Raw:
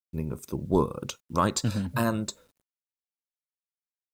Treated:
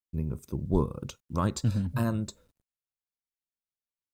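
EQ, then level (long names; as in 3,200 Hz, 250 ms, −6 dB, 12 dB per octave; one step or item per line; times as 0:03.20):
low-shelf EQ 140 Hz +10.5 dB
low-shelf EQ 390 Hz +4.5 dB
−8.0 dB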